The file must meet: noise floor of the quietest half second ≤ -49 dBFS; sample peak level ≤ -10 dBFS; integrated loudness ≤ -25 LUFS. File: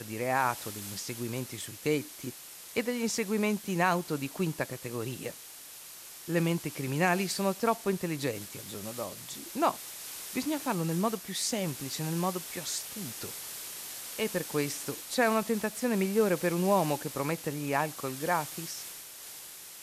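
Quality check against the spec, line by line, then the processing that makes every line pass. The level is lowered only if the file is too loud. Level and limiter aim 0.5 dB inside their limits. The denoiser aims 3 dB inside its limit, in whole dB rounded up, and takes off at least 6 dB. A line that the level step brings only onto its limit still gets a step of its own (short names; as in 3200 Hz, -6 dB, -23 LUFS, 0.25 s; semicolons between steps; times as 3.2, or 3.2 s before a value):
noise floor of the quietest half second -48 dBFS: fail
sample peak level -14.0 dBFS: OK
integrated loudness -32.0 LUFS: OK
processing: denoiser 6 dB, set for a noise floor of -48 dBFS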